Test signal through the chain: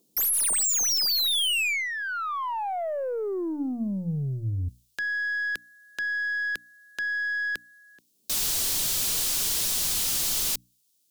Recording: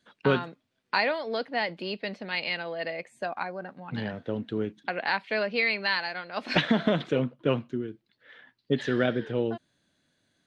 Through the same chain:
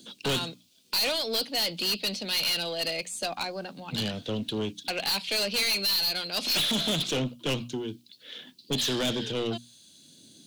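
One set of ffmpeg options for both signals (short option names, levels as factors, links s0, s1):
-filter_complex "[0:a]acrossover=split=170|370|1500[s0][s1][s2][s3];[s1]acompressor=mode=upward:threshold=0.00794:ratio=2.5[s4];[s0][s4][s2][s3]amix=inputs=4:normalize=0,lowshelf=f=360:g=4.5,aexciter=amount=7.6:drive=8.4:freq=2800,aeval=exprs='(tanh(15.8*val(0)+0.1)-tanh(0.1))/15.8':c=same,bandreject=f=60:t=h:w=6,bandreject=f=120:t=h:w=6,bandreject=f=180:t=h:w=6,bandreject=f=240:t=h:w=6,bandreject=f=300:t=h:w=6"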